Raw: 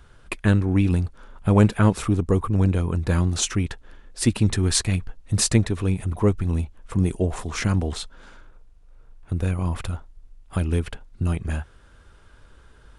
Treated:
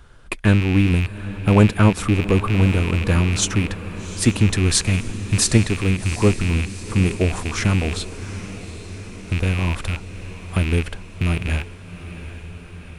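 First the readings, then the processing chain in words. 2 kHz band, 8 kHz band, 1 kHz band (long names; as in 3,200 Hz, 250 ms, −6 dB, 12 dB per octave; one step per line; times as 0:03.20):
+8.0 dB, +3.5 dB, +3.5 dB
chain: loose part that buzzes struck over −28 dBFS, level −19 dBFS
feedback delay with all-pass diffusion 784 ms, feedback 65%, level −14 dB
level +3 dB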